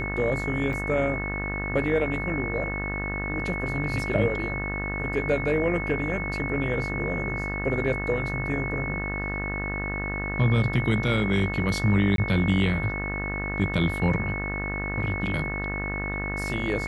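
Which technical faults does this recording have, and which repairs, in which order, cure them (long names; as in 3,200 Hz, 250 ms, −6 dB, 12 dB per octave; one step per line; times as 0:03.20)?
mains buzz 50 Hz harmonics 38 −32 dBFS
whistle 2,200 Hz −31 dBFS
0:00.73: drop-out 2.1 ms
0:12.16–0:12.18: drop-out 22 ms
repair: hum removal 50 Hz, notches 38
notch filter 2,200 Hz, Q 30
repair the gap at 0:00.73, 2.1 ms
repair the gap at 0:12.16, 22 ms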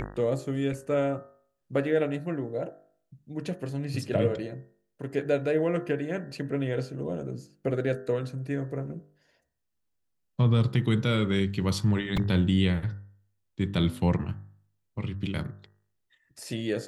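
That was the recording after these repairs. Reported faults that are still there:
none of them is left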